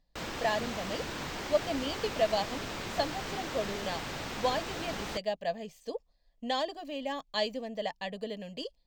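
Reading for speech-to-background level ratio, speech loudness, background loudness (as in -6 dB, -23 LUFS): 3.0 dB, -35.0 LUFS, -38.0 LUFS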